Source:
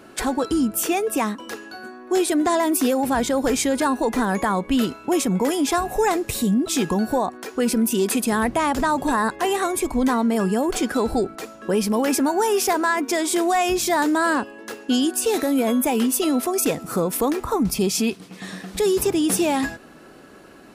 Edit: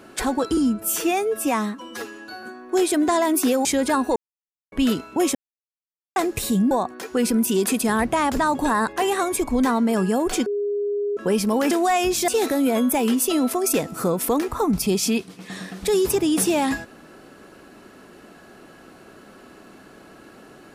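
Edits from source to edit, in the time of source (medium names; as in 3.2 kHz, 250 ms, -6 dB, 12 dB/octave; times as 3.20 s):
0.57–1.81 s: stretch 1.5×
3.03–3.57 s: delete
4.08–4.64 s: mute
5.27–6.08 s: mute
6.63–7.14 s: delete
10.89–11.60 s: bleep 409 Hz -21 dBFS
12.14–13.36 s: delete
13.93–15.20 s: delete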